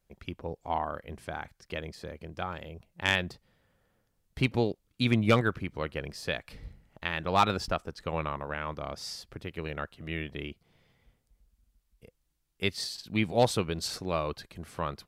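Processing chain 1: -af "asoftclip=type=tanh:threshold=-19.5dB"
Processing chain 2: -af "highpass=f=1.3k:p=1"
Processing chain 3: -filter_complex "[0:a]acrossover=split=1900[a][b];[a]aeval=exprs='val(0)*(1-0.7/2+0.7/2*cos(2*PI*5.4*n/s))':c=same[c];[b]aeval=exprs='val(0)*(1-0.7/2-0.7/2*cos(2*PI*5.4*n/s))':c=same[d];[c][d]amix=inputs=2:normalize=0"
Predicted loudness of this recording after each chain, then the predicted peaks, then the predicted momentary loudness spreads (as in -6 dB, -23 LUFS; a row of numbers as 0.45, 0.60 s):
-34.0, -36.5, -35.0 LUFS; -19.5, -10.5, -12.0 dBFS; 14, 17, 16 LU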